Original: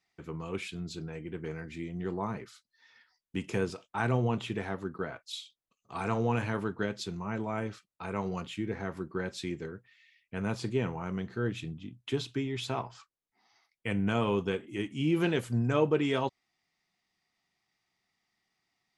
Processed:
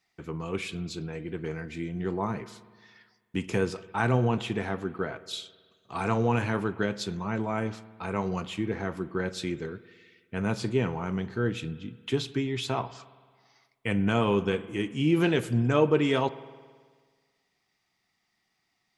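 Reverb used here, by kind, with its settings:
spring reverb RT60 1.6 s, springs 54 ms, chirp 70 ms, DRR 16 dB
level +4 dB

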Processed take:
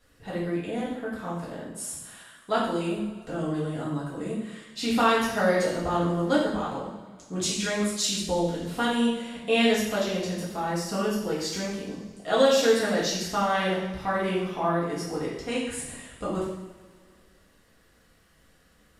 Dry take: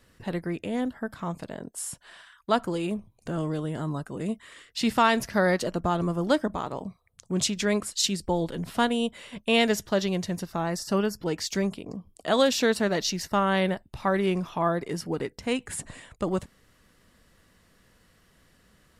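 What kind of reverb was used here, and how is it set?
coupled-rooms reverb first 0.82 s, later 2.4 s, from −17 dB, DRR −8 dB
level −8 dB

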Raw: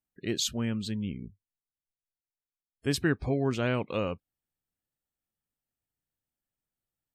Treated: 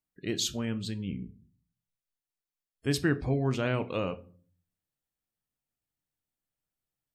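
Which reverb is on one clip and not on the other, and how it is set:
rectangular room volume 310 cubic metres, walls furnished, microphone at 0.52 metres
level −1 dB

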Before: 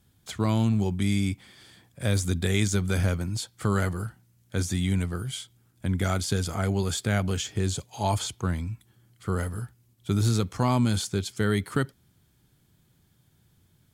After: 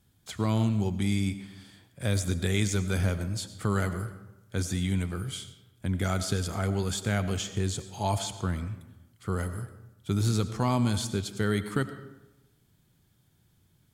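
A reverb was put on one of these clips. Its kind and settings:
comb and all-pass reverb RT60 1 s, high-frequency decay 0.6×, pre-delay 55 ms, DRR 11.5 dB
level −2.5 dB

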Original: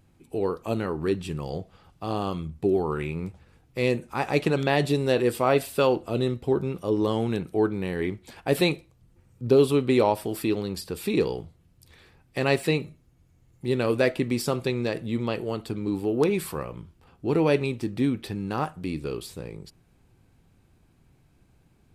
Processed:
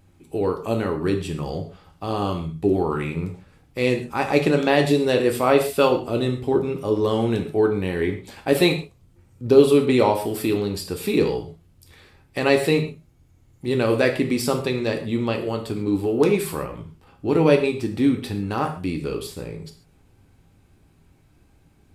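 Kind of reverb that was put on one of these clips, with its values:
reverb whose tail is shaped and stops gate 170 ms falling, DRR 4 dB
level +3 dB

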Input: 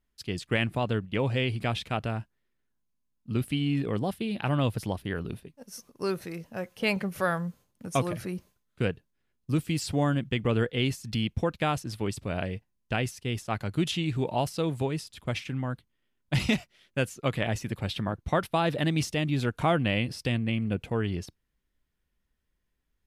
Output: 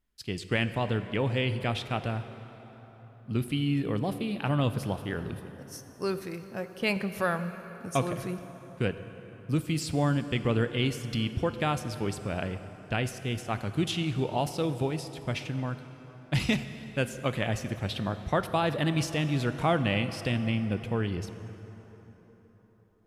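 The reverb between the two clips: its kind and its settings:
dense smooth reverb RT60 4.3 s, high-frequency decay 0.6×, DRR 10 dB
level −1 dB

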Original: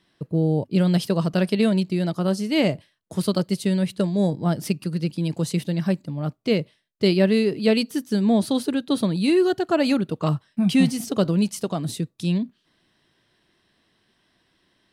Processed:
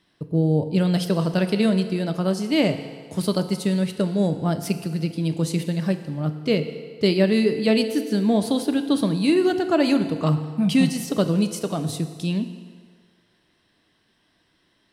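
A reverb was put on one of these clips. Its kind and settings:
feedback delay network reverb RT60 1.9 s, low-frequency decay 0.7×, high-frequency decay 0.8×, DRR 8 dB

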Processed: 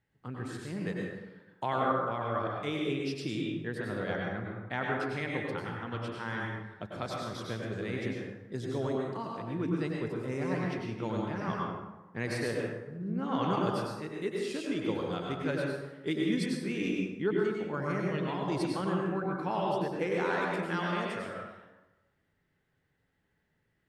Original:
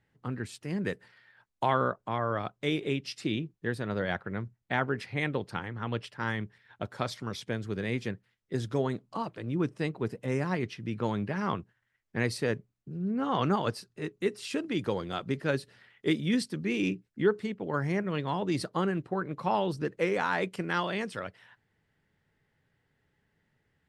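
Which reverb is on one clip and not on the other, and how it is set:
dense smooth reverb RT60 1.1 s, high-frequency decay 0.55×, pre-delay 85 ms, DRR −2 dB
level −6 dB

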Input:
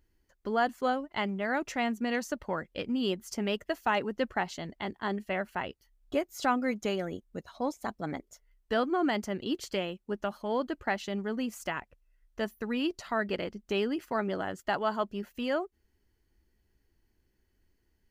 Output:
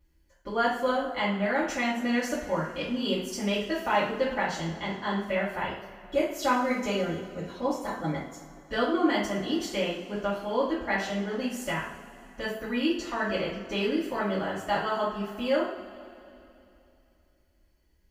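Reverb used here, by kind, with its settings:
coupled-rooms reverb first 0.49 s, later 2.9 s, from −18 dB, DRR −10 dB
level −6.5 dB

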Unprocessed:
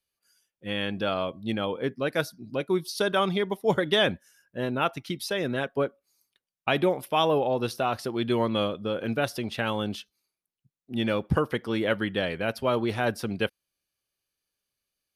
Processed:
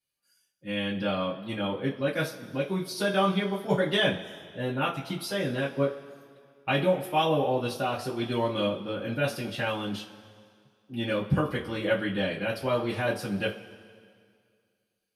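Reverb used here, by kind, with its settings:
coupled-rooms reverb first 0.23 s, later 2.1 s, from −21 dB, DRR −7.5 dB
level −9.5 dB

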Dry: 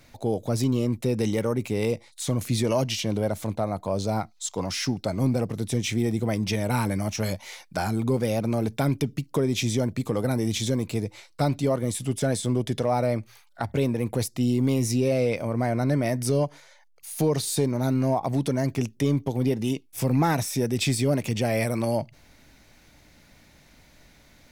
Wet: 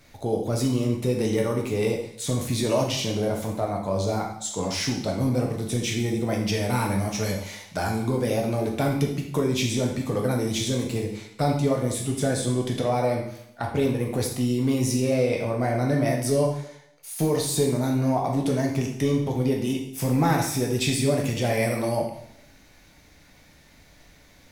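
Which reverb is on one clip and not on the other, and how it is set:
dense smooth reverb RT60 0.72 s, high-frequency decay 1×, DRR −0.5 dB
level −1.5 dB

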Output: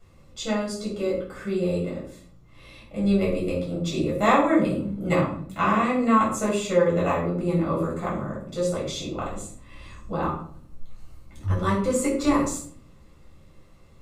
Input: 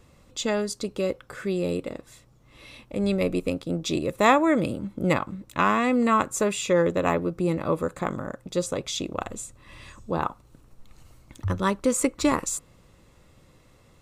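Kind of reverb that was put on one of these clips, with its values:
rectangular room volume 620 cubic metres, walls furnished, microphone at 7 metres
level −10.5 dB

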